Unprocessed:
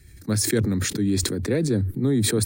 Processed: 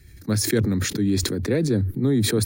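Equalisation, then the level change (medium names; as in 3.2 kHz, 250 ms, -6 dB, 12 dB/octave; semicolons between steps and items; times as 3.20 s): peaking EQ 8.3 kHz -8 dB 0.29 oct; +1.0 dB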